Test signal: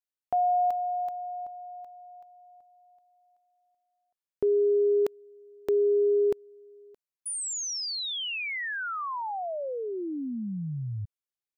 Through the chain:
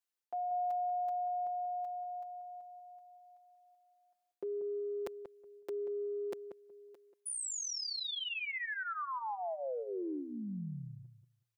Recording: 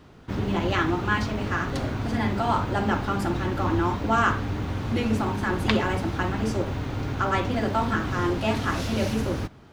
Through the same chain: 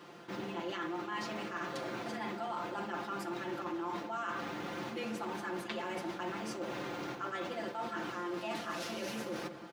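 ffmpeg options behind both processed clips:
ffmpeg -i in.wav -filter_complex "[0:a]highpass=310,aecho=1:1:5.8:0.8,areverse,acompressor=threshold=-37dB:ratio=6:attack=5.7:release=103:knee=6:detection=rms,areverse,asplit=2[link_01][link_02];[link_02]adelay=185,lowpass=frequency=940:poles=1,volume=-8dB,asplit=2[link_03][link_04];[link_04]adelay=185,lowpass=frequency=940:poles=1,volume=0.18,asplit=2[link_05][link_06];[link_06]adelay=185,lowpass=frequency=940:poles=1,volume=0.18[link_07];[link_01][link_03][link_05][link_07]amix=inputs=4:normalize=0" out.wav

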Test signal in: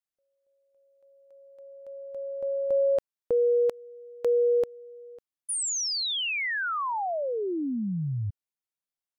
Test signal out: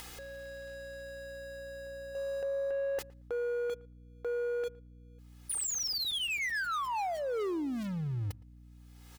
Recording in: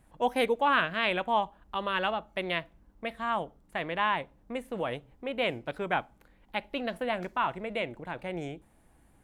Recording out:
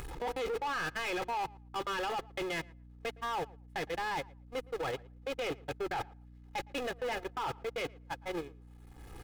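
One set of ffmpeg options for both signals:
ffmpeg -i in.wav -filter_complex "[0:a]aeval=exprs='val(0)+0.5*0.0282*sgn(val(0))':channel_layout=same,agate=range=-51dB:threshold=-29dB:ratio=16:release=73:detection=rms,highshelf=frequency=5800:gain=-8.5,aecho=1:1:2.4:0.83,asplit=2[link_01][link_02];[link_02]acompressor=mode=upward:threshold=-22dB:ratio=4:attack=2.4:release=527:knee=2.83:detection=peak,volume=-1dB[link_03];[link_01][link_03]amix=inputs=2:normalize=0,alimiter=limit=-13.5dB:level=0:latency=1:release=22,areverse,acompressor=threshold=-25dB:ratio=6:attack=8.1:release=64:detection=rms,areverse,aeval=exprs='val(0)+0.00316*(sin(2*PI*60*n/s)+sin(2*PI*2*60*n/s)/2+sin(2*PI*3*60*n/s)/3+sin(2*PI*4*60*n/s)/4+sin(2*PI*5*60*n/s)/5)':channel_layout=same,asoftclip=type=tanh:threshold=-28.5dB,asplit=2[link_04][link_05];[link_05]adelay=114,lowpass=frequency=2000:poles=1,volume=-22dB,asplit=2[link_06][link_07];[link_07]adelay=114,lowpass=frequency=2000:poles=1,volume=0.16[link_08];[link_04][link_06][link_08]amix=inputs=3:normalize=0,volume=-2.5dB" out.wav

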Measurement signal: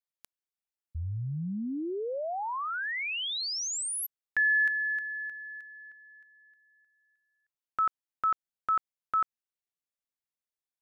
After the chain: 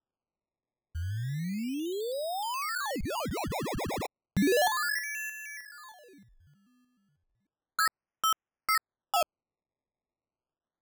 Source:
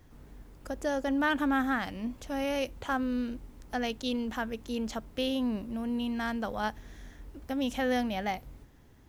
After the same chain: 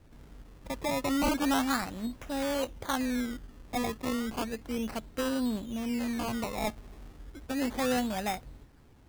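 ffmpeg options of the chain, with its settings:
ffmpeg -i in.wav -af "acrusher=samples=20:mix=1:aa=0.000001:lfo=1:lforange=20:lforate=0.33" out.wav

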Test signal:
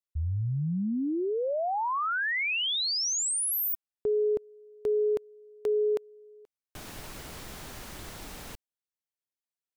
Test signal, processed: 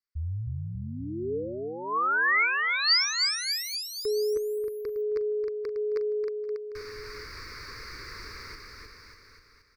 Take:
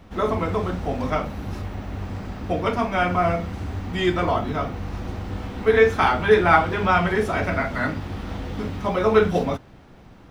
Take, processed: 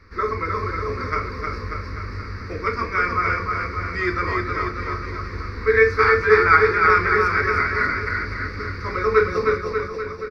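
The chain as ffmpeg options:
ffmpeg -i in.wav -filter_complex "[0:a]firequalizer=gain_entry='entry(100,0);entry(170,-12);entry(440,2);entry(720,-23);entry(1100,5);entry(2200,8);entry(3100,-21);entry(4600,12);entry(7000,-12)':delay=0.05:min_phase=1,asplit=2[link_01][link_02];[link_02]aecho=0:1:310|589|840.1|1066|1269:0.631|0.398|0.251|0.158|0.1[link_03];[link_01][link_03]amix=inputs=2:normalize=0,volume=-2dB" out.wav

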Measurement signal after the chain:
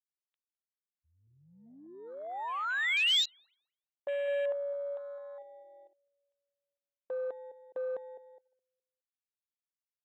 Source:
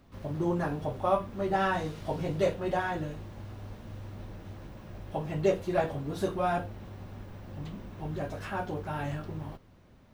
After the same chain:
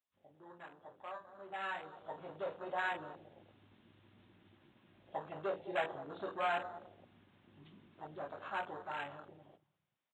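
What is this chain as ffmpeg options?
ffmpeg -i in.wav -filter_complex "[0:a]aresample=16000,asoftclip=type=tanh:threshold=-22dB,aresample=44100,aresample=8000,aresample=44100,highpass=frequency=89:poles=1,equalizer=frequency=820:width_type=o:width=1.2:gain=2,asplit=2[link_01][link_02];[link_02]adelay=208,lowpass=frequency=930:poles=1,volume=-11dB,asplit=2[link_03][link_04];[link_04]adelay=208,lowpass=frequency=930:poles=1,volume=0.44,asplit=2[link_05][link_06];[link_06]adelay=208,lowpass=frequency=930:poles=1,volume=0.44,asplit=2[link_07][link_08];[link_08]adelay=208,lowpass=frequency=930:poles=1,volume=0.44,asplit=2[link_09][link_10];[link_10]adelay=208,lowpass=frequency=930:poles=1,volume=0.44[link_11];[link_03][link_05][link_07][link_09][link_11]amix=inputs=5:normalize=0[link_12];[link_01][link_12]amix=inputs=2:normalize=0,afwtdn=0.0126,dynaudnorm=framelen=330:gausssize=13:maxgain=16dB,aderivative,volume=-1.5dB" out.wav

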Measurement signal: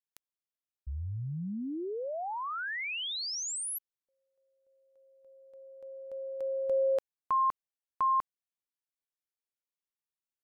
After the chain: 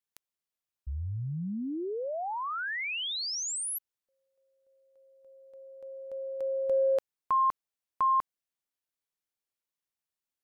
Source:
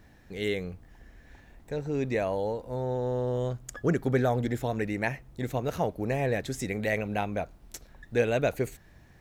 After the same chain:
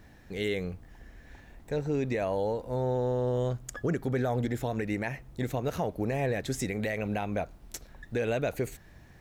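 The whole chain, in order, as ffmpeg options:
ffmpeg -i in.wav -af "acontrast=79,alimiter=limit=-16dB:level=0:latency=1:release=119,volume=-5dB" out.wav

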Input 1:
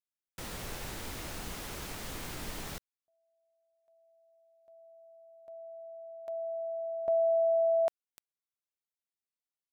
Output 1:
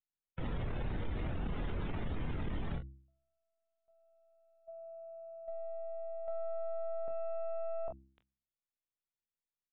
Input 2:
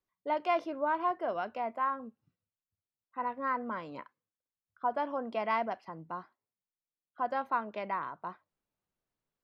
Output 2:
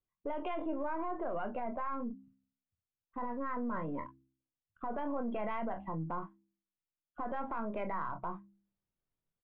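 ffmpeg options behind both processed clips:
ffmpeg -i in.wav -af "aeval=exprs='if(lt(val(0),0),0.708*val(0),val(0))':channel_layout=same,afftdn=noise_reduction=19:noise_floor=-46,lowshelf=frequency=250:gain=11.5,bandreject=frequency=66.18:width_type=h:width=4,bandreject=frequency=132.36:width_type=h:width=4,bandreject=frequency=198.54:width_type=h:width=4,bandreject=frequency=264.72:width_type=h:width=4,bandreject=frequency=330.9:width_type=h:width=4,aresample=8000,aresample=44100,alimiter=level_in=6dB:limit=-24dB:level=0:latency=1:release=17,volume=-6dB,aecho=1:1:25|42:0.355|0.141,acompressor=threshold=-51dB:ratio=2.5:attack=1.2:release=46:knee=6:detection=peak,volume=12dB" out.wav

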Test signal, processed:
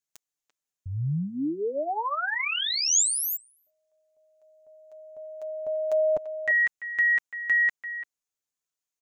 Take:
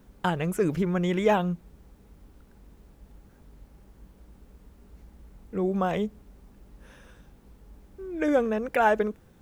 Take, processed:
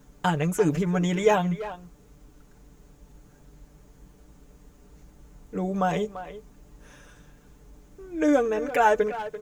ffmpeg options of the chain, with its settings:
ffmpeg -i in.wav -filter_complex "[0:a]equalizer=frequency=6700:width=2.8:gain=9.5,aecho=1:1:6.8:0.65,asplit=2[link_01][link_02];[link_02]adelay=340,highpass=300,lowpass=3400,asoftclip=type=hard:threshold=-16dB,volume=-12dB[link_03];[link_01][link_03]amix=inputs=2:normalize=0" out.wav

